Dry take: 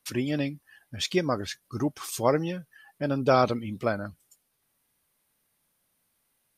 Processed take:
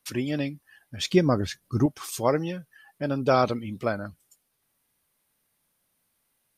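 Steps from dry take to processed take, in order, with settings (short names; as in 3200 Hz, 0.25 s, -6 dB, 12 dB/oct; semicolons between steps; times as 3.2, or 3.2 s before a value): 1.04–1.86 low shelf 380 Hz +10 dB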